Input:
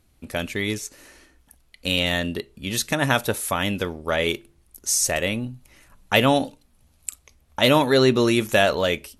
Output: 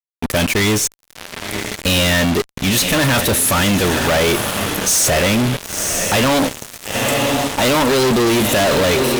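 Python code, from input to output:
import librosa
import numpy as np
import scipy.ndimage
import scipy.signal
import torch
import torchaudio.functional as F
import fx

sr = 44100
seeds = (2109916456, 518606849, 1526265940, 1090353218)

y = fx.echo_diffused(x, sr, ms=982, feedback_pct=41, wet_db=-13.5)
y = fx.fuzz(y, sr, gain_db=42.0, gate_db=-38.0)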